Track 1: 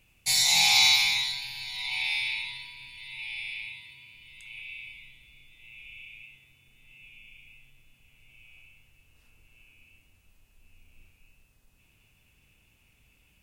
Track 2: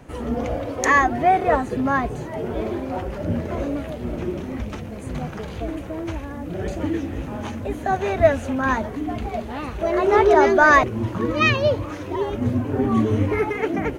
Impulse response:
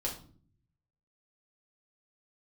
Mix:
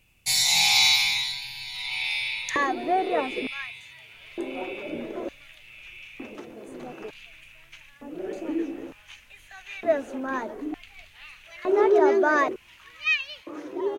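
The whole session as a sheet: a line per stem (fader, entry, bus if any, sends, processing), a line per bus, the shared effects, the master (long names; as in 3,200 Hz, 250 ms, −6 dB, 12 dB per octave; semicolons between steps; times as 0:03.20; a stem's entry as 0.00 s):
+1.0 dB, 0.00 s, no send, no processing
−9.5 dB, 1.65 s, no send, auto-filter high-pass square 0.55 Hz 340–2,500 Hz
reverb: not used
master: no processing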